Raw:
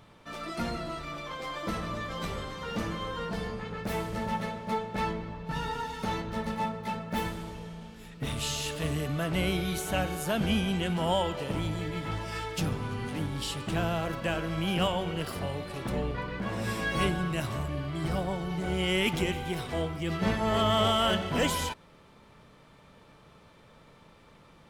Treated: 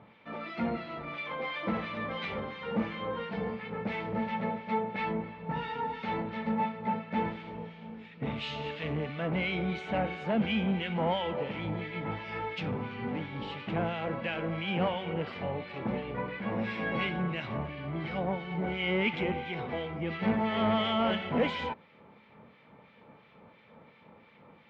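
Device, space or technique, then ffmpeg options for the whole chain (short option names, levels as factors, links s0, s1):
guitar amplifier with harmonic tremolo: -filter_complex "[0:a]acrossover=split=1500[s0][s1];[s0]aeval=exprs='val(0)*(1-0.7/2+0.7/2*cos(2*PI*2.9*n/s))':c=same[s2];[s1]aeval=exprs='val(0)*(1-0.7/2-0.7/2*cos(2*PI*2.9*n/s))':c=same[s3];[s2][s3]amix=inputs=2:normalize=0,asoftclip=type=tanh:threshold=0.0562,highpass=100,equalizer=f=220:t=q:w=4:g=8,equalizer=f=490:t=q:w=4:g=6,equalizer=f=830:t=q:w=4:g=6,equalizer=f=2200:t=q:w=4:g=8,lowpass=f=3500:w=0.5412,lowpass=f=3500:w=1.3066,asettb=1/sr,asplit=3[s4][s5][s6];[s4]atrim=end=1.134[s7];[s5]atrim=start=1.13:end=2.4,asetpts=PTS-STARTPTS,afade=t=in:d=0.004:c=qsin,afade=t=out:st=1.266:d=0.004:c=qsin,equalizer=f=3000:w=0.45:g=3.5[s8];[s6]atrim=start=2.396[s9];[s7][s8]acrossfade=d=0.004:c1=hsin:c2=qsin[s10];[s10][s9]acrossfade=d=0.004:c1=qsin:c2=hsin"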